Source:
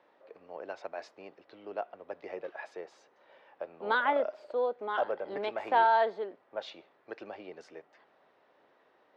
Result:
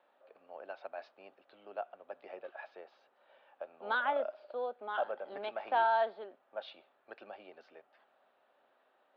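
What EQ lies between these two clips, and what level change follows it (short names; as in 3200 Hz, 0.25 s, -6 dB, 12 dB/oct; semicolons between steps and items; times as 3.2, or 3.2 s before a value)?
air absorption 120 m; speaker cabinet 160–4400 Hz, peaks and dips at 170 Hz -9 dB, 320 Hz -9 dB, 450 Hz -8 dB, 1000 Hz -6 dB, 2000 Hz -9 dB; low shelf 270 Hz -6.5 dB; 0.0 dB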